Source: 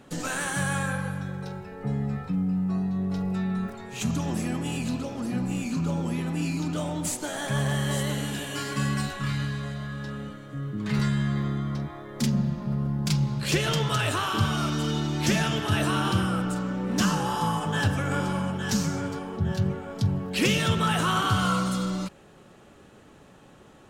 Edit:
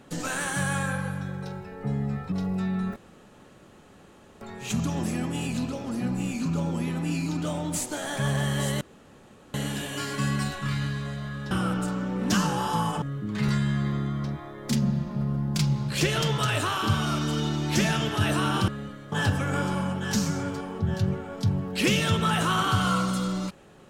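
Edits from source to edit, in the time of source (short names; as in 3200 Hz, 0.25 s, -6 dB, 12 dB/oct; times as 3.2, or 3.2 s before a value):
2.32–3.08 cut
3.72 insert room tone 1.45 s
8.12 insert room tone 0.73 s
10.09–10.53 swap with 16.19–17.7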